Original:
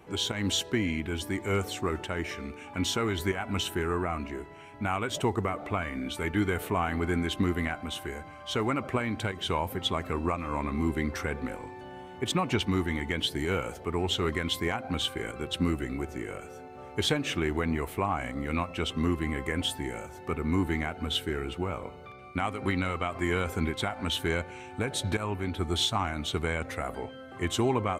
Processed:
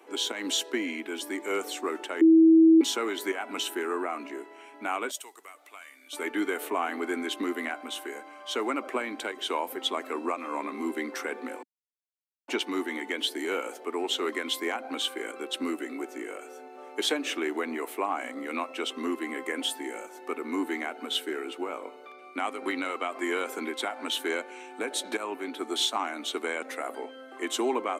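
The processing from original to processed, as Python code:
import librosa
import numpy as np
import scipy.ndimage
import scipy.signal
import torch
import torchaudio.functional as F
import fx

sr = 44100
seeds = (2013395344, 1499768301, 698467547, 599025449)

y = fx.differentiator(x, sr, at=(5.11, 6.13))
y = fx.edit(y, sr, fx.bleep(start_s=2.21, length_s=0.6, hz=324.0, db=-13.0),
    fx.silence(start_s=11.63, length_s=0.85), tone=tone)
y = scipy.signal.sosfilt(scipy.signal.butter(8, 260.0, 'highpass', fs=sr, output='sos'), y)
y = fx.peak_eq(y, sr, hz=11000.0, db=3.0, octaves=1.4)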